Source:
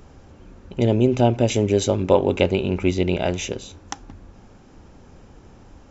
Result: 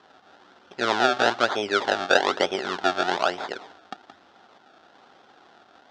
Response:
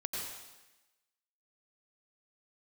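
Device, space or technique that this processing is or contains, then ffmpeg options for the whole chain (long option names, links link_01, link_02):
circuit-bent sampling toy: -af "acrusher=samples=30:mix=1:aa=0.000001:lfo=1:lforange=30:lforate=1.1,highpass=480,equalizer=frequency=510:width_type=q:width=4:gain=-4,equalizer=frequency=750:width_type=q:width=4:gain=7,equalizer=frequency=1400:width_type=q:width=4:gain=8,equalizer=frequency=2300:width_type=q:width=4:gain=-5,equalizer=frequency=3500:width_type=q:width=4:gain=5,lowpass=frequency=5500:width=0.5412,lowpass=frequency=5500:width=1.3066,volume=-1dB"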